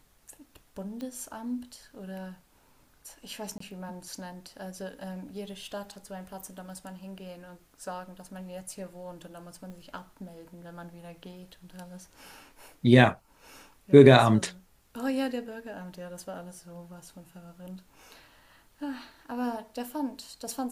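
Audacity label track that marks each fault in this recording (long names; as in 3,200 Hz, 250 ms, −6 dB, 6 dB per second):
1.010000	1.010000	click −26 dBFS
3.580000	3.600000	drop-out 24 ms
9.700000	9.700000	click −33 dBFS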